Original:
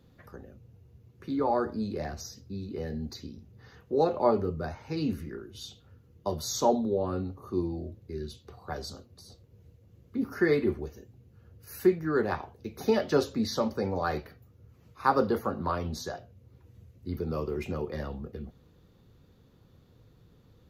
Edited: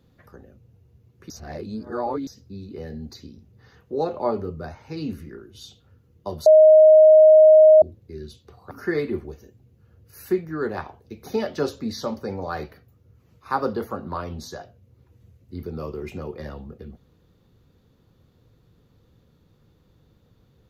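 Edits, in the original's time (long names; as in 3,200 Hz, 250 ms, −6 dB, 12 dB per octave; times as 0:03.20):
0:01.30–0:02.27: reverse
0:06.46–0:07.82: beep over 624 Hz −7.5 dBFS
0:08.71–0:10.25: remove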